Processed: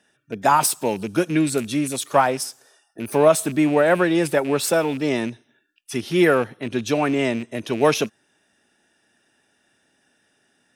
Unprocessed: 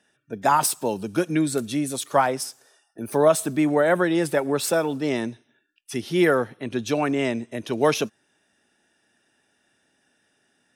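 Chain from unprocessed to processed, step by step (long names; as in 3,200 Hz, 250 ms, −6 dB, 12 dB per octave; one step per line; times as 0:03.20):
loose part that buzzes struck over −33 dBFS, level −29 dBFS
level +2.5 dB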